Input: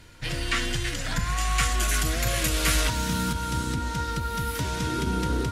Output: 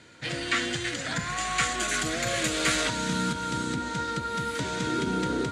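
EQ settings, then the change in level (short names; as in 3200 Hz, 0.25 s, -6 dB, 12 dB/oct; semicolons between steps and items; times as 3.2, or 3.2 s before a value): speaker cabinet 180–8100 Hz, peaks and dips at 1000 Hz -5 dB, 2800 Hz -4 dB, 5400 Hz -7 dB; +2.0 dB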